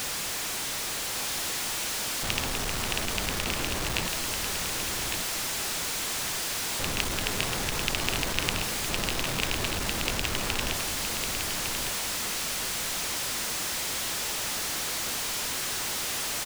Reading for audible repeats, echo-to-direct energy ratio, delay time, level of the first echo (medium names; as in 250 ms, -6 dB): 2, -5.5 dB, 1156 ms, -6.0 dB